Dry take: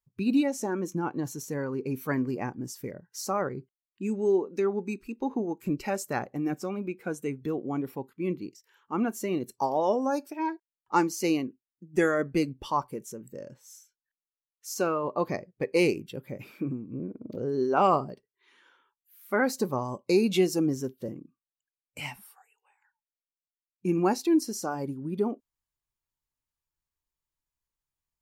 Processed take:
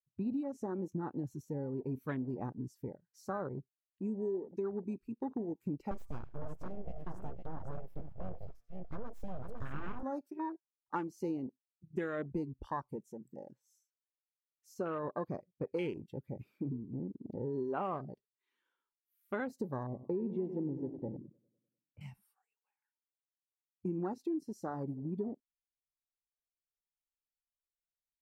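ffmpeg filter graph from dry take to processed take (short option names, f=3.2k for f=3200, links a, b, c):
-filter_complex "[0:a]asettb=1/sr,asplit=3[a][b][c];[a]atrim=end=5.914[d];[b]atrim=start=5.91:end=10.03,asetpts=PTS-STARTPTS,afade=t=in:d=0.004:c=qsin,afade=t=out:st=4.116:d=0.004:c=qsin,bandreject=f=117.5:t=h:w=4,bandreject=f=235:t=h:w=4,bandreject=f=352.5:t=h:w=4,bandreject=f=470:t=h:w=4,bandreject=f=587.5:t=h:w=4,bandreject=f=705:t=h:w=4,bandreject=f=822.5:t=h:w=4,bandreject=f=940:t=h:w=4,bandreject=f=1.0575k:t=h:w=4,aecho=1:1:94|504:0.106|0.447,atrim=end_sample=181692,aeval=exprs='abs(val(0))':c=same[e];[c]atrim=start=10.026[f];[d][e]acrossfade=d=0.004:c1=hsin:c2=qsin[g];[g][f]acrossfade=d=0.004:c1=qsin:c2=hsin,asettb=1/sr,asplit=3[h][i][j];[h]atrim=end=19.834[k];[i]atrim=start=19.83:end=22.01,asetpts=PTS-STARTPTS,afade=t=in:d=0.004:c=qsin,afade=t=out:st=2.176:d=0.004:c=qsin,lowpass=1.3k,aecho=1:1:100|200|300|400|500|600|700:0.266|0.154|0.0895|0.0519|0.0301|0.0175|0.0101,atrim=end_sample=96138[l];[j]atrim=start=22.006[m];[k][l]acrossfade=d=0.004:c1=hsin:c2=qsin[n];[n][m]acrossfade=d=0.004:c1=qsin:c2=hsin,afwtdn=0.0224,lowshelf=f=180:g=7.5,acompressor=threshold=-26dB:ratio=6,volume=-7dB"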